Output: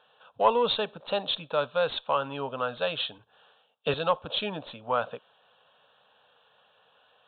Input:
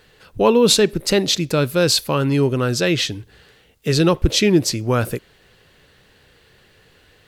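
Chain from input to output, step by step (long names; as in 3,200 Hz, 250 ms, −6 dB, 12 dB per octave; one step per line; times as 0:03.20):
high-pass filter 480 Hz 12 dB per octave
phaser with its sweep stopped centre 850 Hz, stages 4
in parallel at −11 dB: asymmetric clip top −21.5 dBFS
on the sum: downsampling to 8,000 Hz
0:03.18–0:03.94: multiband upward and downward expander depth 100%
level −2.5 dB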